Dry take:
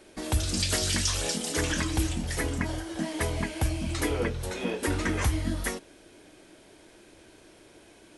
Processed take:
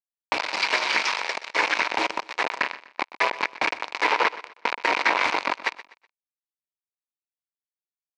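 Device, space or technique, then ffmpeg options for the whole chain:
hand-held game console: -filter_complex "[0:a]acrusher=bits=3:mix=0:aa=0.000001,highpass=480,equalizer=f=960:t=q:w=4:g=9,equalizer=f=2.3k:t=q:w=4:g=8,equalizer=f=3.3k:t=q:w=4:g=-6,lowpass=f=4.3k:w=0.5412,lowpass=f=4.3k:w=1.3066,lowshelf=f=260:g=-8.5,asettb=1/sr,asplit=3[a][b][c];[a]atrim=end=2.514[d];[b]atrim=start=2.51:end=2.91,asetpts=PTS-STARTPTS,afade=t=in:d=0.004:c=qsin,afade=t=out:st=0.396:d=0.004:c=qsin,asplit=2[e][f];[f]adelay=37,volume=-9.5dB[g];[e][g]amix=inputs=2:normalize=0,atrim=end_sample=17640[h];[c]atrim=start=2.906[i];[d][h]acrossfade=d=0.004:c1=hsin:c2=qsin[j];[j][i]acrossfade=d=0.004:c1=qsin:c2=hsin,aecho=1:1:124|248|372:0.15|0.0479|0.0153,volume=6.5dB"

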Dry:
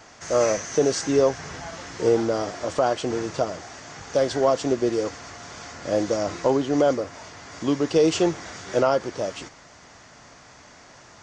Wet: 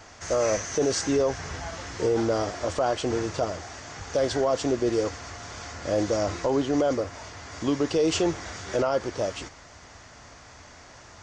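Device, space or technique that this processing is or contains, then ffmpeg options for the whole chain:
car stereo with a boomy subwoofer: -af "lowshelf=f=110:t=q:w=1.5:g=6.5,alimiter=limit=-15.5dB:level=0:latency=1:release=13"

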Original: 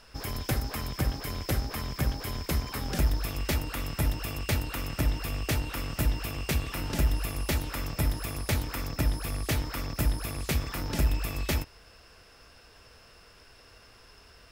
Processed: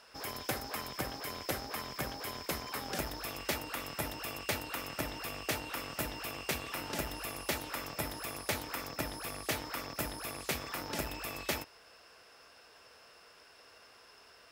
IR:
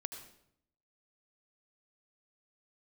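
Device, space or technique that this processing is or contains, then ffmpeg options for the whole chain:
filter by subtraction: -filter_complex "[0:a]asplit=2[a][b];[b]lowpass=660,volume=-1[c];[a][c]amix=inputs=2:normalize=0,volume=-3dB"

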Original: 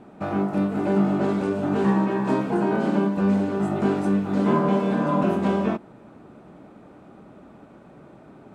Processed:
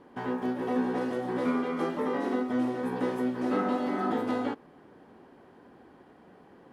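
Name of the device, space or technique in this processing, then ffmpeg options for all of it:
nightcore: -af "asetrate=56007,aresample=44100,volume=-7.5dB"

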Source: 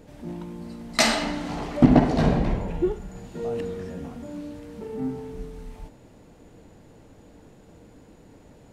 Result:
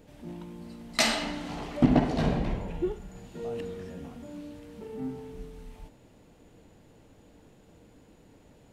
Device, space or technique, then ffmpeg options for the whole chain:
presence and air boost: -af "equalizer=f=3k:t=o:w=0.87:g=4,highshelf=f=11k:g=5.5,volume=-6dB"

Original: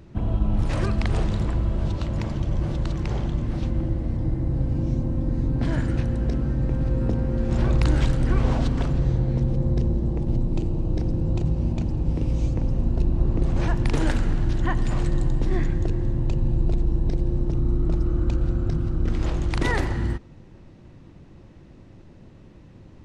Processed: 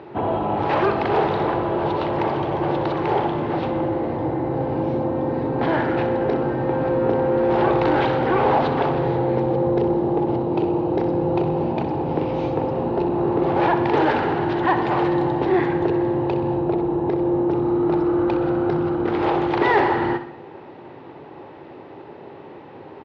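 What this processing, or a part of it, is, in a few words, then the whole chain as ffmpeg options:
overdrive pedal into a guitar cabinet: -filter_complex "[0:a]highpass=f=140:p=1,asettb=1/sr,asplit=3[a][b][c];[a]atrim=end=16.594[d];[b]atrim=start=16.59:end=17.51,asetpts=PTS-STARTPTS,afade=t=in:d=0.004:c=qsin,afade=t=out:st=0.916:d=0.004:c=qsin,highshelf=f=3.9k:g=-11[e];[c]atrim=start=17.506[f];[d][e]acrossfade=d=0.004:c1=hsin:c2=qsin[g];[g][f]acrossfade=d=0.004:c1=qsin:c2=hsin,asplit=2[h][i];[i]highpass=f=720:p=1,volume=22dB,asoftclip=type=tanh:threshold=-12dB[j];[h][j]amix=inputs=2:normalize=0,lowpass=f=1.3k:p=1,volume=-6dB,highpass=91,equalizer=f=200:t=q:w=4:g=-8,equalizer=f=410:t=q:w=4:g=8,equalizer=f=840:t=q:w=4:g=10,lowpass=f=4.2k:w=0.5412,lowpass=f=4.2k:w=1.3066,aecho=1:1:63|126|189|252|315:0.282|0.141|0.0705|0.0352|0.0176,volume=1dB"

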